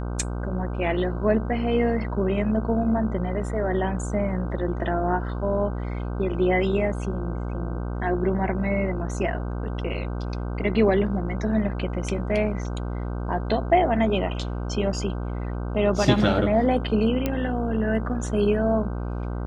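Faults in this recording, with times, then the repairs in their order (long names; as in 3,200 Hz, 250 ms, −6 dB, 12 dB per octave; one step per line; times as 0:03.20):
mains buzz 60 Hz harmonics 26 −29 dBFS
0:17.26: click −11 dBFS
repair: click removal
hum removal 60 Hz, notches 26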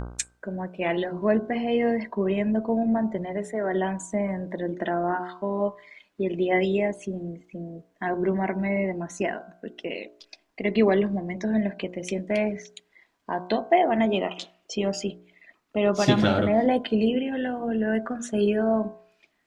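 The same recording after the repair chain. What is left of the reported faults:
none of them is left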